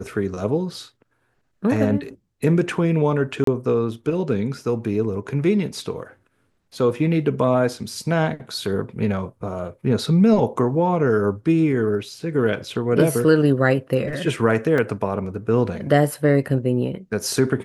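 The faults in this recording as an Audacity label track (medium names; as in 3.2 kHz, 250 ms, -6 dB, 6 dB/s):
3.440000	3.470000	dropout 33 ms
14.780000	14.780000	dropout 2.9 ms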